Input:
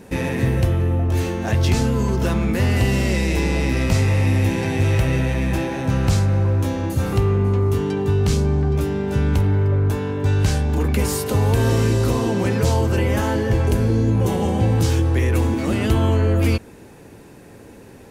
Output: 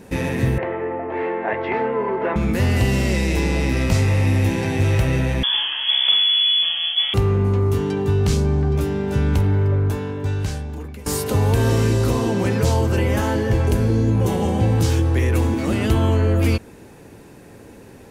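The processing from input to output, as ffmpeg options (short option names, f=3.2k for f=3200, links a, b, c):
-filter_complex "[0:a]asettb=1/sr,asplit=3[a][b][c];[a]atrim=end=0.584[d];[b]atrim=start=0.58:end=2.36,asetpts=PTS-STARTPTS,afade=t=in:d=0.004:c=qsin,afade=t=out:st=1.776:d=0.004:c=qsin,highpass=370,equalizer=f=420:t=q:w=4:g=8,equalizer=f=630:t=q:w=4:g=4,equalizer=f=920:t=q:w=4:g=8,equalizer=f=2k:t=q:w=4:g=9,lowpass=f=2.3k:w=0.5412,lowpass=f=2.3k:w=1.3066[e];[c]atrim=start=2.356[f];[d][e]acrossfade=d=0.004:c1=hsin:c2=qsin[g];[g][f]acrossfade=d=0.004:c1=qsin:c2=hsin,asettb=1/sr,asplit=3[h][i][j];[h]atrim=end=5.434[k];[i]atrim=start=5.43:end=7.14,asetpts=PTS-STARTPTS,afade=t=in:d=0.004:c=qsin,afade=t=out:st=1.706:d=0.004:c=qsin,lowpass=f=3k:t=q:w=0.5098,lowpass=f=3k:t=q:w=0.6013,lowpass=f=3k:t=q:w=0.9,lowpass=f=3k:t=q:w=2.563,afreqshift=-3500[l];[j]atrim=start=7.136[m];[k][l]acrossfade=d=0.004:c1=hsin:c2=qsin[n];[n][m]acrossfade=d=0.004:c1=qsin:c2=hsin,asplit=2[o][p];[o]atrim=end=11.06,asetpts=PTS-STARTPTS,afade=t=out:st=9.7:d=1.36:silence=0.0891251[q];[p]atrim=start=11.06,asetpts=PTS-STARTPTS,afade=t=in:d=0.004:c=hsin:silence=0.0891251[r];[q][r]concat=n=2:v=0:a=1"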